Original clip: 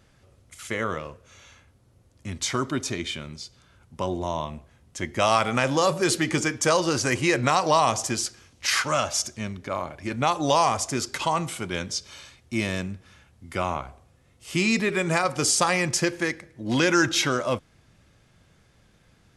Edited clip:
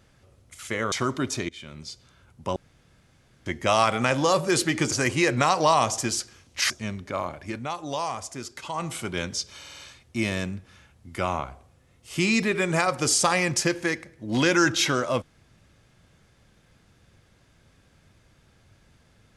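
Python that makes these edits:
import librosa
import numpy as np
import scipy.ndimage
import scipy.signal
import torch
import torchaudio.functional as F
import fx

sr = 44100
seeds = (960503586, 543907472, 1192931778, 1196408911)

y = fx.edit(x, sr, fx.cut(start_s=0.92, length_s=1.53),
    fx.fade_in_from(start_s=3.02, length_s=0.4, floor_db=-21.5),
    fx.room_tone_fill(start_s=4.09, length_s=0.9),
    fx.cut(start_s=6.45, length_s=0.53),
    fx.cut(start_s=8.76, length_s=0.51),
    fx.fade_down_up(start_s=10.0, length_s=1.52, db=-9.0, fade_s=0.23),
    fx.stutter(start_s=12.16, slice_s=0.05, count=5), tone=tone)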